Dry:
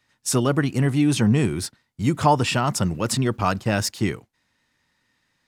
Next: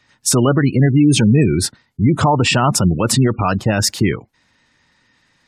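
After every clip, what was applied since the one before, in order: spectral gate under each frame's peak -25 dB strong; loudness maximiser +14.5 dB; trim -4 dB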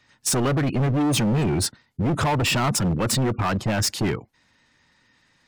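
hard clipper -16 dBFS, distortion -7 dB; trim -3 dB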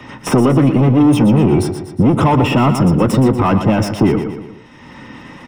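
feedback delay 118 ms, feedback 36%, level -9.5 dB; reverberation RT60 0.30 s, pre-delay 3 ms, DRR 12.5 dB; three bands compressed up and down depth 70%; trim -4 dB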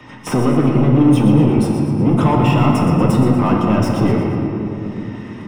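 simulated room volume 220 m³, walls hard, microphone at 0.49 m; trim -5.5 dB

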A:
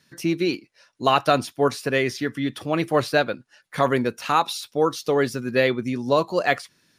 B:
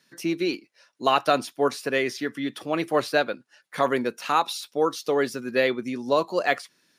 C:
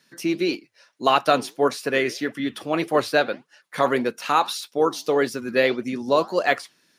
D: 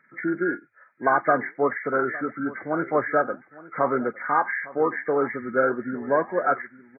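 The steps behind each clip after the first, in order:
high-pass 220 Hz 12 dB/octave; trim -2 dB
flange 1.7 Hz, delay 0.9 ms, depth 8.7 ms, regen -85%; trim +7 dB
knee-point frequency compression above 1.2 kHz 4:1; delay 859 ms -19.5 dB; trim -2.5 dB

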